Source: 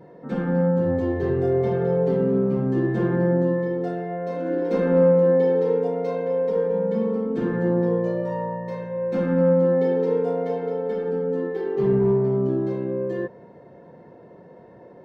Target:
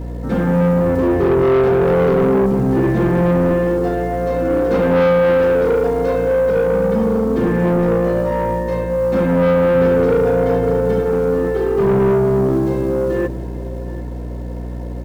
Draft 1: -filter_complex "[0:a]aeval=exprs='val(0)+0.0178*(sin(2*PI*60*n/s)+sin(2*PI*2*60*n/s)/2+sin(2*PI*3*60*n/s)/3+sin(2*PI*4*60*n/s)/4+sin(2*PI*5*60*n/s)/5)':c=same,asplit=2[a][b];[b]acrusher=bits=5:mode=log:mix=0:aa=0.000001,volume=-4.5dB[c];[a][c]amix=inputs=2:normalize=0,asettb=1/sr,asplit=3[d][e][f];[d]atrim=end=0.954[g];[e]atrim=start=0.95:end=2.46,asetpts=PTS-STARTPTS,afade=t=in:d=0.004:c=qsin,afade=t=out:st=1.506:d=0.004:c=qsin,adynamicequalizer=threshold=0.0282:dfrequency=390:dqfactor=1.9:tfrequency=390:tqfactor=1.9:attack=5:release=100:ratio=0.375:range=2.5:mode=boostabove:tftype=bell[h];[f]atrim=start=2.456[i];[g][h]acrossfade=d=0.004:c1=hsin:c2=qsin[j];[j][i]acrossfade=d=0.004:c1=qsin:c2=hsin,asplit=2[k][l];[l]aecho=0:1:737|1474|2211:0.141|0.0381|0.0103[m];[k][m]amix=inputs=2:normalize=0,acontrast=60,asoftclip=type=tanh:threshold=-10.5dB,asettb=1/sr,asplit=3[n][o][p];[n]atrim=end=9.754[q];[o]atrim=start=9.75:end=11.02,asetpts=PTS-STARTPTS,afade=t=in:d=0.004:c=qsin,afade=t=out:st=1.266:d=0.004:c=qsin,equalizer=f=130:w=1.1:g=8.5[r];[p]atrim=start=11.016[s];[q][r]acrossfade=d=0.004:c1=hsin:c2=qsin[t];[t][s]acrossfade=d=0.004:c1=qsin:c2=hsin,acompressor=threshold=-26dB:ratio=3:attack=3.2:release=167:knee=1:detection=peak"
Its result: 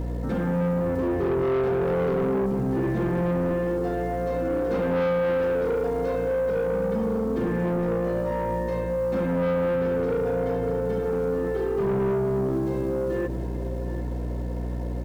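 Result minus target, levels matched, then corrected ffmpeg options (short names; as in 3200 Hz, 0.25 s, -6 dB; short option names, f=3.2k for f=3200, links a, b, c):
compressor: peak gain reduction +12 dB
-filter_complex "[0:a]aeval=exprs='val(0)+0.0178*(sin(2*PI*60*n/s)+sin(2*PI*2*60*n/s)/2+sin(2*PI*3*60*n/s)/3+sin(2*PI*4*60*n/s)/4+sin(2*PI*5*60*n/s)/5)':c=same,asplit=2[a][b];[b]acrusher=bits=5:mode=log:mix=0:aa=0.000001,volume=-4.5dB[c];[a][c]amix=inputs=2:normalize=0,asettb=1/sr,asplit=3[d][e][f];[d]atrim=end=0.954[g];[e]atrim=start=0.95:end=2.46,asetpts=PTS-STARTPTS,afade=t=in:d=0.004:c=qsin,afade=t=out:st=1.506:d=0.004:c=qsin,adynamicequalizer=threshold=0.0282:dfrequency=390:dqfactor=1.9:tfrequency=390:tqfactor=1.9:attack=5:release=100:ratio=0.375:range=2.5:mode=boostabove:tftype=bell[h];[f]atrim=start=2.456[i];[g][h]acrossfade=d=0.004:c1=hsin:c2=qsin[j];[j][i]acrossfade=d=0.004:c1=qsin:c2=hsin,asplit=2[k][l];[l]aecho=0:1:737|1474|2211:0.141|0.0381|0.0103[m];[k][m]amix=inputs=2:normalize=0,acontrast=60,asoftclip=type=tanh:threshold=-10.5dB,asettb=1/sr,asplit=3[n][o][p];[n]atrim=end=9.754[q];[o]atrim=start=9.75:end=11.02,asetpts=PTS-STARTPTS,afade=t=in:d=0.004:c=qsin,afade=t=out:st=1.266:d=0.004:c=qsin,equalizer=f=130:w=1.1:g=8.5[r];[p]atrim=start=11.016[s];[q][r]acrossfade=d=0.004:c1=hsin:c2=qsin[t];[t][s]acrossfade=d=0.004:c1=qsin:c2=hsin"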